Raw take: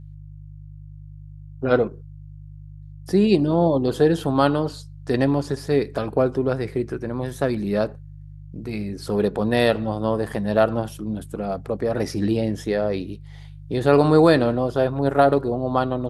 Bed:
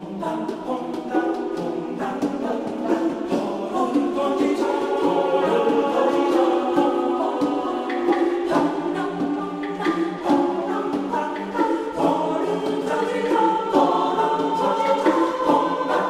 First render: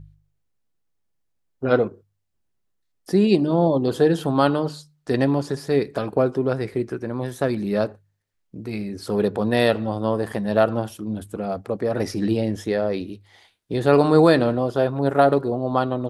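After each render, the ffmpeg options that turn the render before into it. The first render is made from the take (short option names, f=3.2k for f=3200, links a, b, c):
-af "bandreject=f=50:t=h:w=4,bandreject=f=100:t=h:w=4,bandreject=f=150:t=h:w=4"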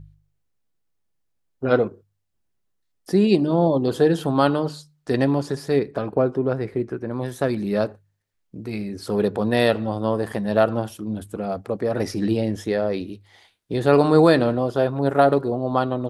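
-filter_complex "[0:a]asettb=1/sr,asplit=3[a][b][c];[a]atrim=end=5.794[d];[b]atrim=start=5.79:end=7.11,asetpts=PTS-STARTPTS,afade=t=in:d=0.004:c=qsin,afade=t=out:st=1.316:d=0.004:c=qsin,highshelf=f=3.1k:g=-11[e];[c]atrim=start=7.106[f];[d][e]acrossfade=d=0.004:c1=hsin:c2=qsin[g];[g][f]acrossfade=d=0.004:c1=qsin:c2=hsin"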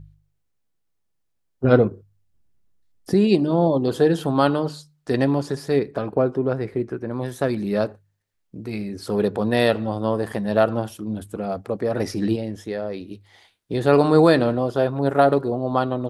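-filter_complex "[0:a]asettb=1/sr,asplit=3[a][b][c];[a]atrim=end=1.644[d];[b]atrim=start=1.64:end=3.14,asetpts=PTS-STARTPTS,afade=t=in:d=0.004:c=qsin,afade=t=out:st=1.496:d=0.004:c=qsin,lowshelf=f=240:g=12[e];[c]atrim=start=3.136[f];[d][e]acrossfade=d=0.004:c1=hsin:c2=qsin[g];[g][f]acrossfade=d=0.004:c1=qsin:c2=hsin,asplit=3[h][i][j];[h]atrim=end=12.362[k];[i]atrim=start=12.358:end=13.112,asetpts=PTS-STARTPTS,volume=-5.5dB[l];[j]atrim=start=13.108[m];[k][l]acrossfade=d=0.004:c1=hsin:c2=hsin[n];[n][m]acrossfade=d=0.004:c1=hsin:c2=hsin"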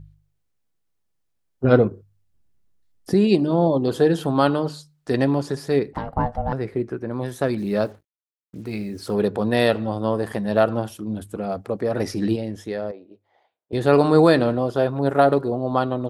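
-filter_complex "[0:a]asettb=1/sr,asplit=3[a][b][c];[a]atrim=end=5.934[d];[b]atrim=start=5.93:end=6.53,asetpts=PTS-STARTPTS,afade=t=in:d=0.004:c=qsin,afade=t=out:st=0.596:d=0.004:c=qsin,aeval=exprs='val(0)*sin(2*PI*360*n/s)':c=same[e];[c]atrim=start=6.526[f];[d][e]acrossfade=d=0.004:c1=hsin:c2=qsin[g];[g][f]acrossfade=d=0.004:c1=qsin:c2=hsin,asettb=1/sr,asplit=3[h][i][j];[h]atrim=end=7.584[k];[i]atrim=start=7.58:end=9.14,asetpts=PTS-STARTPTS,afade=t=in:d=0.004:c=qsin,afade=t=out:st=1.556:d=0.004:c=qsin,acrusher=bits=8:mix=0:aa=0.5[l];[j]atrim=start=9.136[m];[k][l]acrossfade=d=0.004:c1=hsin:c2=qsin[n];[n][m]acrossfade=d=0.004:c1=qsin:c2=hsin,asettb=1/sr,asplit=3[o][p][q];[o]atrim=end=12.914[r];[p]atrim=start=12.91:end=13.73,asetpts=PTS-STARTPTS,afade=t=in:d=0.004:c=qsin,afade=t=out:st=0.816:d=0.004:c=qsin,bandpass=f=650:t=q:w=2.1[s];[q]atrim=start=13.726[t];[r][s]acrossfade=d=0.004:c1=hsin:c2=qsin[u];[u][t]acrossfade=d=0.004:c1=qsin:c2=hsin"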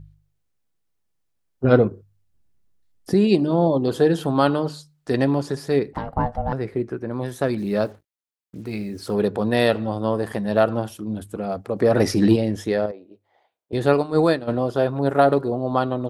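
-filter_complex "[0:a]asettb=1/sr,asplit=3[a][b][c];[a]atrim=end=11.764[d];[b]atrim=start=11.76:end=12.86,asetpts=PTS-STARTPTS,afade=t=in:d=0.004:c=qsin,afade=t=out:st=1.096:d=0.004:c=qsin,acontrast=65[e];[c]atrim=start=12.856[f];[d][e]acrossfade=d=0.004:c1=hsin:c2=qsin[g];[g][f]acrossfade=d=0.004:c1=qsin:c2=hsin,asplit=3[h][i][j];[h]afade=t=out:st=13.92:d=0.02[k];[i]agate=range=-33dB:threshold=-10dB:ratio=3:release=100:detection=peak,afade=t=in:st=13.92:d=0.02,afade=t=out:st=14.47:d=0.02[l];[j]afade=t=in:st=14.47:d=0.02[m];[k][l][m]amix=inputs=3:normalize=0"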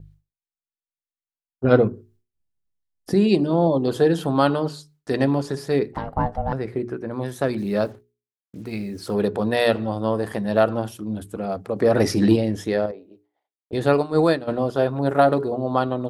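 -af "agate=range=-33dB:threshold=-51dB:ratio=3:detection=peak,bandreject=f=60:t=h:w=6,bandreject=f=120:t=h:w=6,bandreject=f=180:t=h:w=6,bandreject=f=240:t=h:w=6,bandreject=f=300:t=h:w=6,bandreject=f=360:t=h:w=6,bandreject=f=420:t=h:w=6"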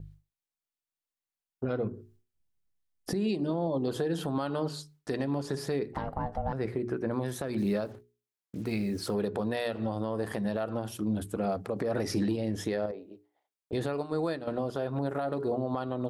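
-af "acompressor=threshold=-24dB:ratio=6,alimiter=limit=-20.5dB:level=0:latency=1:release=150"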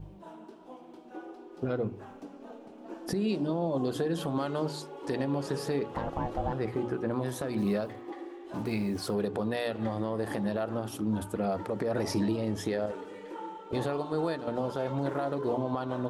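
-filter_complex "[1:a]volume=-22dB[a];[0:a][a]amix=inputs=2:normalize=0"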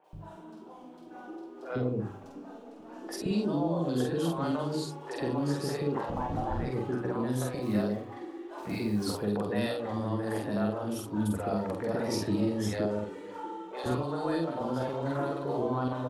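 -filter_complex "[0:a]asplit=2[a][b];[b]adelay=48,volume=-3dB[c];[a][c]amix=inputs=2:normalize=0,acrossover=split=510|2500[d][e][f];[f]adelay=40[g];[d]adelay=130[h];[h][e][g]amix=inputs=3:normalize=0"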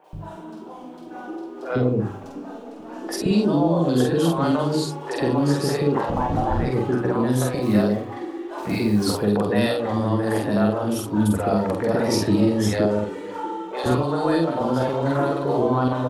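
-af "volume=10dB"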